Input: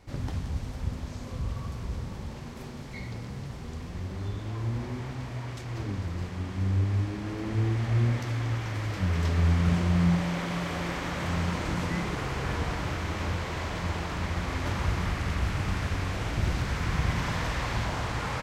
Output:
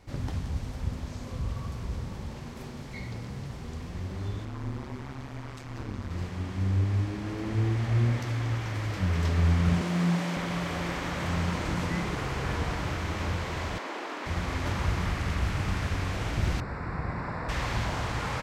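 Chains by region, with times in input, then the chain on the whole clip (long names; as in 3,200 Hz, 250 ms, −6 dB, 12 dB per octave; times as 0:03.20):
0:04.45–0:06.11: parametric band 1,200 Hz +4 dB 0.9 octaves + amplitude modulation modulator 140 Hz, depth 85%
0:09.81–0:10.37: high-pass filter 160 Hz 24 dB per octave + high-shelf EQ 6,600 Hz +5.5 dB + highs frequency-modulated by the lows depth 0.13 ms
0:13.78–0:14.26: Butterworth high-pass 250 Hz 48 dB per octave + high-shelf EQ 4,600 Hz −7.5 dB
0:16.60–0:17.49: moving average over 14 samples + low-shelf EQ 170 Hz −8.5 dB
whole clip: no processing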